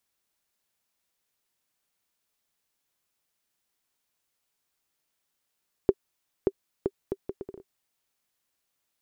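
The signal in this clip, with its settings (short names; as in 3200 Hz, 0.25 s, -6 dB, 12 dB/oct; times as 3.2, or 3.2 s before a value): bouncing ball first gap 0.58 s, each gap 0.67, 391 Hz, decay 48 ms -7.5 dBFS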